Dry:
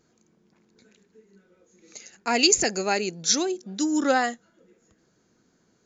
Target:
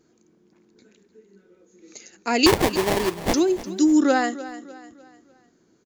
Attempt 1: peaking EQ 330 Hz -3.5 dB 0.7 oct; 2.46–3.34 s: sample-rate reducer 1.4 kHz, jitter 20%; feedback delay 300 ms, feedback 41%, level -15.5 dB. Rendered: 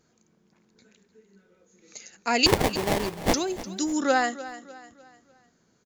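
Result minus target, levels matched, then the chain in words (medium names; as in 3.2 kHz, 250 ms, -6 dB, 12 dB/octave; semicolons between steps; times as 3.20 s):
250 Hz band -4.0 dB
peaking EQ 330 Hz +8.5 dB 0.7 oct; 2.46–3.34 s: sample-rate reducer 1.4 kHz, jitter 20%; feedback delay 300 ms, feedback 41%, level -15.5 dB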